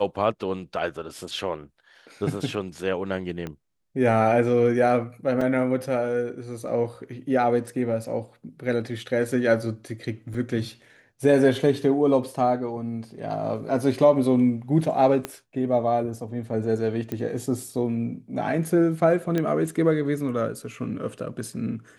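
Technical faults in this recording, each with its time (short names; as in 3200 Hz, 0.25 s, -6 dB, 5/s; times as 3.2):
3.47 pop -19 dBFS
5.41 gap 3.9 ms
10.34 gap 3.9 ms
15.25 pop -13 dBFS
17.12 pop -17 dBFS
19.38 pop -13 dBFS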